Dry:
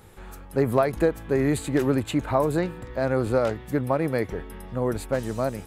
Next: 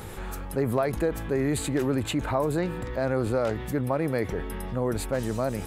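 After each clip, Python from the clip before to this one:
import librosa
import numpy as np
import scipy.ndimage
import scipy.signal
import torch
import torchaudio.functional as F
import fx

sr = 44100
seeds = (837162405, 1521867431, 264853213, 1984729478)

y = fx.env_flatten(x, sr, amount_pct=50)
y = y * librosa.db_to_amplitude(-5.5)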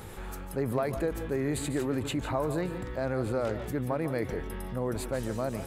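y = fx.echo_multitap(x, sr, ms=(146, 167), db=(-13.5, -14.0))
y = y * librosa.db_to_amplitude(-4.5)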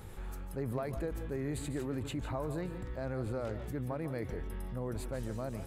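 y = fx.low_shelf(x, sr, hz=130.0, db=9.0)
y = y * librosa.db_to_amplitude(-8.5)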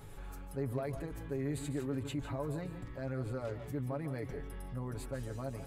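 y = x + 0.68 * np.pad(x, (int(7.1 * sr / 1000.0), 0))[:len(x)]
y = y * librosa.db_to_amplitude(-3.5)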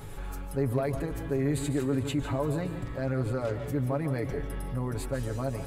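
y = fx.rev_freeverb(x, sr, rt60_s=3.6, hf_ratio=0.95, predelay_ms=80, drr_db=15.0)
y = y * librosa.db_to_amplitude(8.5)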